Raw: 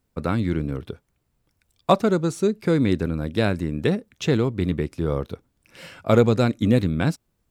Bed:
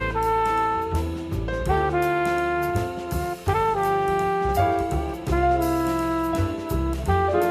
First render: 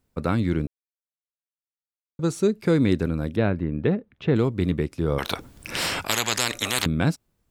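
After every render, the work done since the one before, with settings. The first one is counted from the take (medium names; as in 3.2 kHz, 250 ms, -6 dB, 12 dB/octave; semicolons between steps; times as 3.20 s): 0.67–2.19 s: mute; 3.36–4.36 s: distance through air 410 m; 5.18–6.86 s: spectrum-flattening compressor 10:1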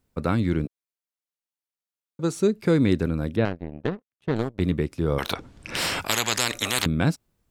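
0.65–2.35 s: high-pass 160 Hz; 3.45–4.60 s: power-law waveshaper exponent 2; 5.33–5.75 s: distance through air 76 m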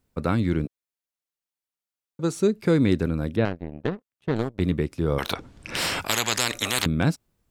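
hard clipper -9 dBFS, distortion -35 dB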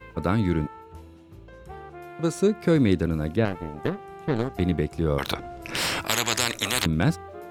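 add bed -19.5 dB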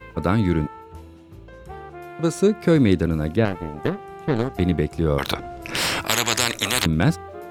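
trim +3.5 dB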